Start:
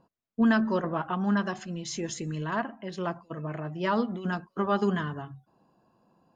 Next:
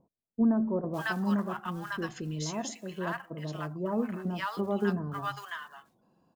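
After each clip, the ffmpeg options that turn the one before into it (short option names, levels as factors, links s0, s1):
-filter_complex "[0:a]acrusher=bits=8:mode=log:mix=0:aa=0.000001,acrossover=split=870[s0][s1];[s1]adelay=550[s2];[s0][s2]amix=inputs=2:normalize=0,volume=0.794"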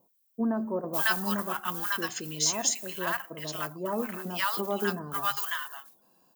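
-af "aemphasis=mode=production:type=riaa,volume=1.5"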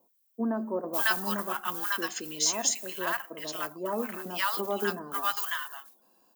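-af "highpass=f=210:w=0.5412,highpass=f=210:w=1.3066"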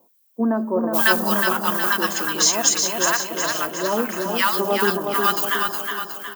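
-af "aecho=1:1:364|728|1092|1456|1820|2184:0.562|0.287|0.146|0.0746|0.038|0.0194,volume=2.82"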